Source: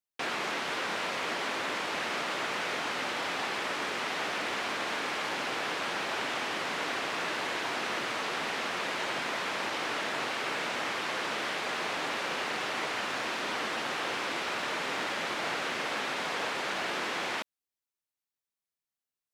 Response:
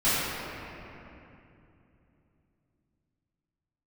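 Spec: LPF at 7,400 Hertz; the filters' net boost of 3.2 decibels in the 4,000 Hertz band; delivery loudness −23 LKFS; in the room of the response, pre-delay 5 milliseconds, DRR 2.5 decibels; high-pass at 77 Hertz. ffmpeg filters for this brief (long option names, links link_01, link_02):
-filter_complex "[0:a]highpass=77,lowpass=7400,equalizer=frequency=4000:width_type=o:gain=4.5,asplit=2[link_01][link_02];[1:a]atrim=start_sample=2205,adelay=5[link_03];[link_02][link_03]afir=irnorm=-1:irlink=0,volume=-18.5dB[link_04];[link_01][link_04]amix=inputs=2:normalize=0,volume=6dB"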